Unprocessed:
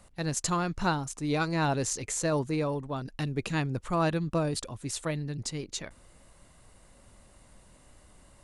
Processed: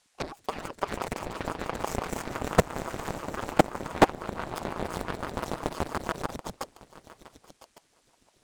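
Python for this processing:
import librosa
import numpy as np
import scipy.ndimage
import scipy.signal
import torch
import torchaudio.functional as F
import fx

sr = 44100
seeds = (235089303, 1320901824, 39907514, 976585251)

y = fx.lower_of_two(x, sr, delay_ms=0.52)
y = fx.high_shelf(y, sr, hz=3400.0, db=-4.0)
y = fx.echo_swell(y, sr, ms=144, loudest=5, wet_db=-8)
y = fx.dynamic_eq(y, sr, hz=310.0, q=0.87, threshold_db=-40.0, ratio=4.0, max_db=6)
y = fx.level_steps(y, sr, step_db=10)
y = fx.cheby_harmonics(y, sr, harmonics=(3, 6, 7), levels_db=(-22, -11, -21), full_scale_db=-12.0)
y = fx.transient(y, sr, attack_db=9, sustain_db=-6)
y = fx.dmg_noise_band(y, sr, seeds[0], low_hz=640.0, high_hz=9600.0, level_db=-67.0)
y = fx.ring_lfo(y, sr, carrier_hz=460.0, swing_pct=80, hz=5.9)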